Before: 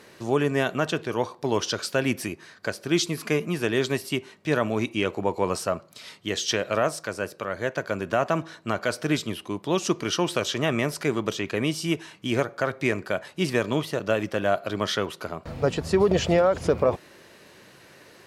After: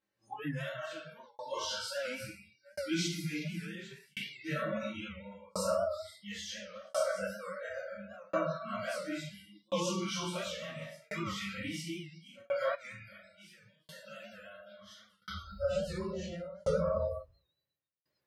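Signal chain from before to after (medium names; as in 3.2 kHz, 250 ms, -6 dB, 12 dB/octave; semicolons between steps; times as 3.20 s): phase randomisation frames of 100 ms; simulated room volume 410 m³, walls mixed, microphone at 2.2 m; peak limiter -10 dBFS, peak gain reduction 9.5 dB; repeats whose band climbs or falls 122 ms, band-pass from 550 Hz, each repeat 1.4 oct, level -4 dB; spectral noise reduction 30 dB; 12.75–15.22 s: amplifier tone stack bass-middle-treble 5-5-5; tremolo saw down 0.72 Hz, depth 100%; peaking EQ 360 Hz -7.5 dB 0.25 oct; comb of notches 240 Hz; warped record 78 rpm, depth 100 cents; trim -8.5 dB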